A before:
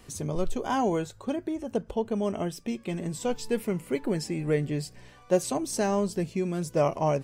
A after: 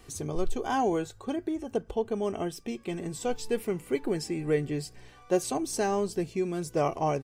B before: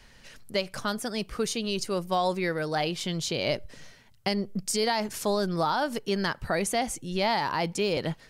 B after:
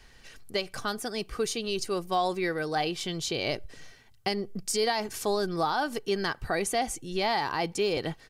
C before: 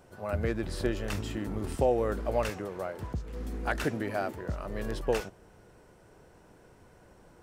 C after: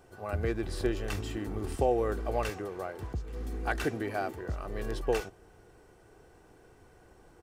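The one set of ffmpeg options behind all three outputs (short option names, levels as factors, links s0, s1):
-af "aecho=1:1:2.6:0.37,volume=0.841"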